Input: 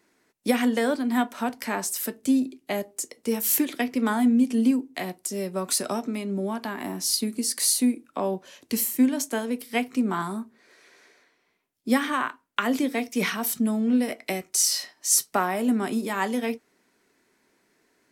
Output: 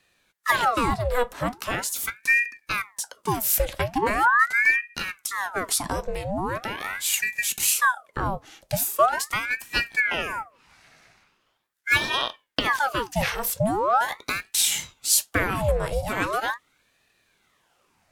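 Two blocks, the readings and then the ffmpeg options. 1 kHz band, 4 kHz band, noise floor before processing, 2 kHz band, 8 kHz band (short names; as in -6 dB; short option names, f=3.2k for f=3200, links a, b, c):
+6.0 dB, +3.0 dB, -69 dBFS, +10.0 dB, 0.0 dB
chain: -af "aeval=exprs='val(0)*sin(2*PI*1200*n/s+1200*0.8/0.41*sin(2*PI*0.41*n/s))':c=same,volume=3.5dB"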